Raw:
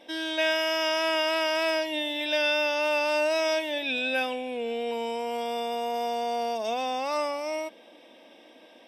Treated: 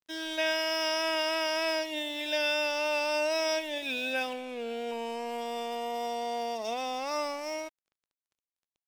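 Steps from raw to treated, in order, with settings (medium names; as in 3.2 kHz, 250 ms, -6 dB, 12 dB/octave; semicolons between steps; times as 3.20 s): dynamic bell 5.5 kHz, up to +7 dB, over -52 dBFS, Q 5; crossover distortion -43 dBFS; trim -3 dB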